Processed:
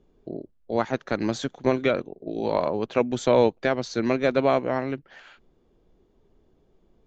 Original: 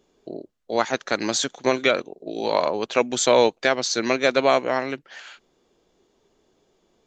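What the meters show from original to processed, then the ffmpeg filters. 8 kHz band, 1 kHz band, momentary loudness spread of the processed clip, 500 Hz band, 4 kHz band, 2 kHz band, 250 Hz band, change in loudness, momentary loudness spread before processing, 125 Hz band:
−15.5 dB, −4.0 dB, 14 LU, −2.0 dB, −11.0 dB, −7.0 dB, +1.5 dB, −3.0 dB, 20 LU, +6.5 dB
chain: -af "aemphasis=mode=reproduction:type=riaa,volume=-4.5dB"

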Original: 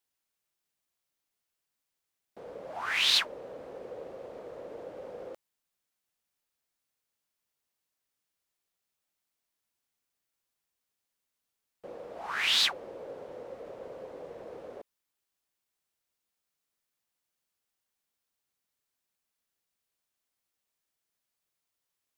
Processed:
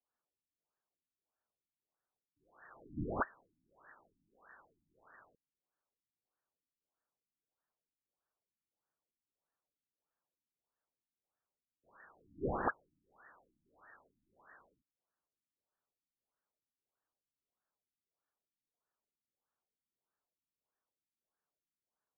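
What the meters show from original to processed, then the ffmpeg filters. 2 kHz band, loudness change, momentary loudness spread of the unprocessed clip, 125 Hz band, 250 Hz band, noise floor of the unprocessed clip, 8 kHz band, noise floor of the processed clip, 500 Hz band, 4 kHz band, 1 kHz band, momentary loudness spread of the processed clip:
−14.5 dB, −13.0 dB, 21 LU, +8.0 dB, +3.5 dB, −85 dBFS, below −35 dB, below −85 dBFS, −7.0 dB, below −40 dB, −3.0 dB, 17 LU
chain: -af "lowpass=frequency=2400:width_type=q:width=0.5098,lowpass=frequency=2400:width_type=q:width=0.6013,lowpass=frequency=2400:width_type=q:width=0.9,lowpass=frequency=2400:width_type=q:width=2.563,afreqshift=-2800,afftfilt=real='re*lt(b*sr/1024,300*pow(1900/300,0.5+0.5*sin(2*PI*1.6*pts/sr)))':imag='im*lt(b*sr/1024,300*pow(1900/300,0.5+0.5*sin(2*PI*1.6*pts/sr)))':win_size=1024:overlap=0.75,volume=1dB"

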